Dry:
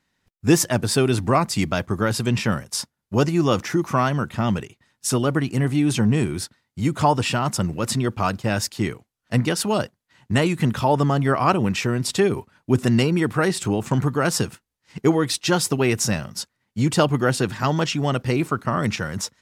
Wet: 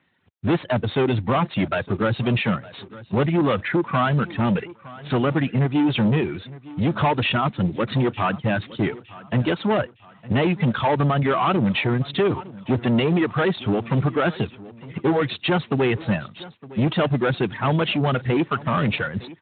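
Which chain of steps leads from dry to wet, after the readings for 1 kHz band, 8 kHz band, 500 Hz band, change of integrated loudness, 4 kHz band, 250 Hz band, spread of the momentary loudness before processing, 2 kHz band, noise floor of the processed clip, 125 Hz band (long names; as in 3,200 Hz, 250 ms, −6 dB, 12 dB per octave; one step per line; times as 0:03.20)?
−0.5 dB, below −40 dB, 0.0 dB, −0.5 dB, −2.0 dB, 0.0 dB, 7 LU, +0.5 dB, −51 dBFS, −0.5 dB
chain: reverb reduction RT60 1.8 s
in parallel at +0.5 dB: brickwall limiter −16 dBFS, peak gain reduction 11 dB
on the sum: soft clipping −17.5 dBFS, distortion −9 dB
repeating echo 911 ms, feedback 40%, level −19 dB
level +1.5 dB
Speex 18 kbit/s 8,000 Hz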